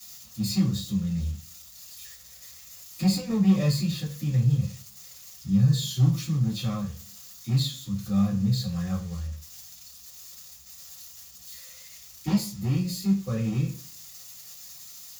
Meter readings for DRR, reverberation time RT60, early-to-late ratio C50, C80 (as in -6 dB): -10.5 dB, 0.40 s, 9.5 dB, 14.0 dB